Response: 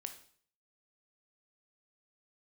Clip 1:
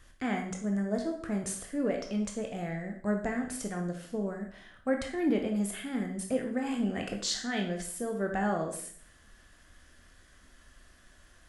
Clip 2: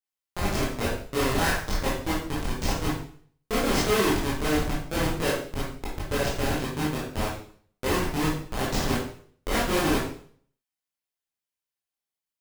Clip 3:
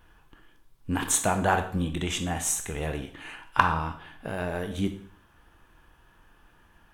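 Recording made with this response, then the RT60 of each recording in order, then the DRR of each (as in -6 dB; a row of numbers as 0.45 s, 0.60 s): 3; 0.50 s, 0.50 s, 0.50 s; 2.0 dB, -7.5 dB, 6.5 dB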